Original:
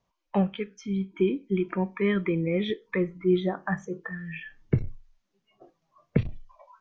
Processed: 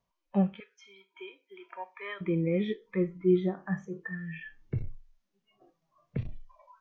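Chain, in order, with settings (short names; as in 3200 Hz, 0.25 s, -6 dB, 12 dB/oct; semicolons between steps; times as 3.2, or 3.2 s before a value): 0.6–2.21 HPF 670 Hz 24 dB/oct; harmonic-percussive split percussive -12 dB; gain -1 dB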